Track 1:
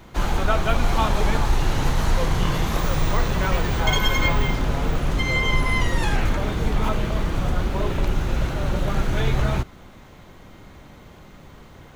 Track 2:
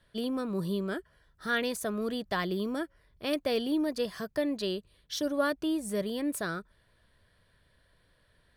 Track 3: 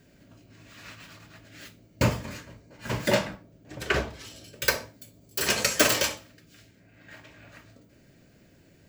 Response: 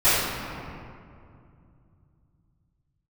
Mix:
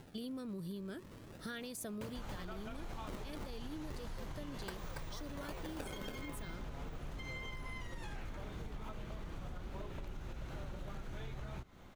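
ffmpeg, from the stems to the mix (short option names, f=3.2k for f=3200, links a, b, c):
-filter_complex "[0:a]adelay=2000,volume=-12dB[a];[1:a]equalizer=f=1k:w=0.44:g=-9.5,volume=0.5dB[b];[2:a]acompressor=mode=upward:threshold=-28dB:ratio=2.5,acrusher=samples=36:mix=1:aa=0.000001:lfo=1:lforange=57.6:lforate=0.35,volume=-15.5dB,asplit=2[c][d];[d]volume=-3.5dB[e];[a][b]amix=inputs=2:normalize=0,alimiter=level_in=3dB:limit=-24dB:level=0:latency=1:release=204,volume=-3dB,volume=0dB[f];[e]aecho=0:1:280:1[g];[c][f][g]amix=inputs=3:normalize=0,acompressor=threshold=-41dB:ratio=6"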